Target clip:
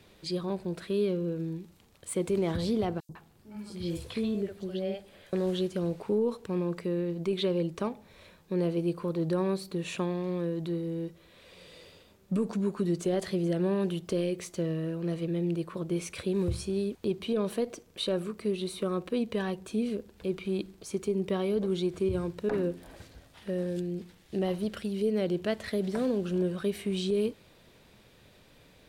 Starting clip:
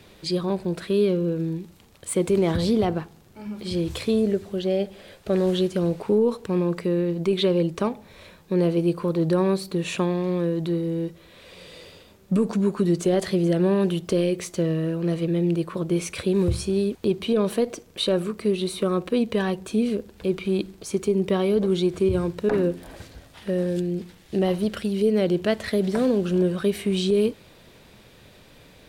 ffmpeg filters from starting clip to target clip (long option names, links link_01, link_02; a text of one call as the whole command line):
ffmpeg -i in.wav -filter_complex "[0:a]asettb=1/sr,asplit=3[link_01][link_02][link_03];[link_01]atrim=end=3.004[link_04];[link_02]atrim=start=3:end=5.33,asetpts=PTS-STARTPTS,afade=type=in:duration=0.004:curve=qsin,afade=type=out:start_time=2.326:duration=0.004:curve=qsin,acrossover=split=520|5200[link_05][link_06][link_07];[link_05]adelay=90[link_08];[link_06]adelay=150[link_09];[link_08][link_09][link_07]amix=inputs=3:normalize=0,atrim=end_sample=102753[link_10];[link_03]atrim=start=5.326[link_11];[link_04][link_10]acrossfade=duration=0.004:curve1=hsin:curve2=qsin[link_12];[link_12][link_11]acrossfade=duration=0.004:curve1=qsin:curve2=hsin,volume=-7.5dB" out.wav